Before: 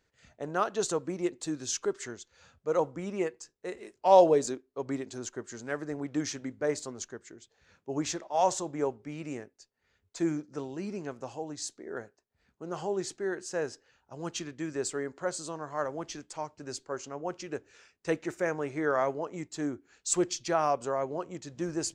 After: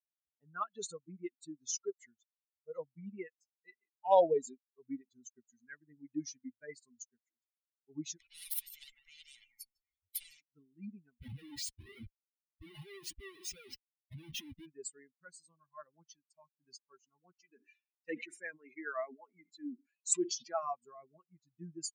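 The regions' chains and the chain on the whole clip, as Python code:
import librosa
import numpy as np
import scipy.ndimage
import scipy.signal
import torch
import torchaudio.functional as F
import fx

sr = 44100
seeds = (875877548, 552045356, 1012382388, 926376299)

y = fx.chain(x, sr, fx.lower_of_two(delay_ms=0.94),
    fx.echo_feedback(ms=154, feedback_pct=24, wet_db=-16),
    fx.spectral_comp(ratio=10.0), at=(8.2, 10.41))
y = fx.chain(y, sr, fx.dynamic_eq(hz=340.0, q=1.1, threshold_db=-46.0, ratio=4.0, max_db=8),
    fx.schmitt(flips_db=-45.0),
    fx.highpass(hz=76.0, slope=6), at=(11.19, 14.66))
y = fx.chain(y, sr, fx.highpass(hz=190.0, slope=24),
    fx.sustainer(db_per_s=73.0), at=(17.32, 20.63))
y = fx.bin_expand(y, sr, power=3.0)
y = fx.high_shelf(y, sr, hz=3900.0, db=6.0)
y = y * 10.0 ** (-3.5 / 20.0)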